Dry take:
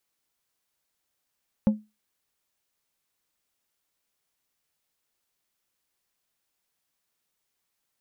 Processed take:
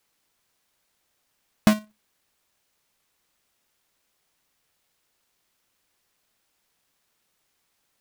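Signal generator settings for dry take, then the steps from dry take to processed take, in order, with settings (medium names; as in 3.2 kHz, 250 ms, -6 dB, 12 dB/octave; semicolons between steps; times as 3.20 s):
glass hit plate, lowest mode 213 Hz, decay 0.24 s, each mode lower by 11 dB, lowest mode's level -13 dB
square wave that keeps the level; in parallel at +2 dB: level held to a coarse grid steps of 14 dB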